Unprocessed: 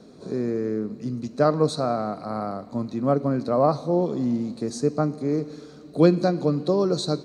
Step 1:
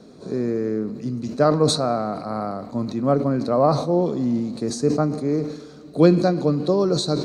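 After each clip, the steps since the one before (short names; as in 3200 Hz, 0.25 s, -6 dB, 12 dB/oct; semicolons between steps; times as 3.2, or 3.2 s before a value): sustainer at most 79 dB/s; gain +2 dB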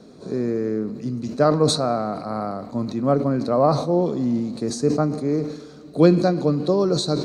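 nothing audible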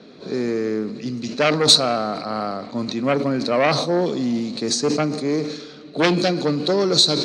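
added harmonics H 5 -6 dB, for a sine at -2.5 dBFS; low-pass opened by the level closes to 2800 Hz, open at -8 dBFS; weighting filter D; gain -8.5 dB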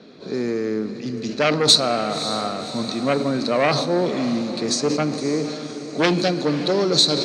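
diffused feedback echo 0.56 s, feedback 54%, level -12 dB; reverb RT60 4.5 s, pre-delay 6 ms, DRR 17.5 dB; gain -1 dB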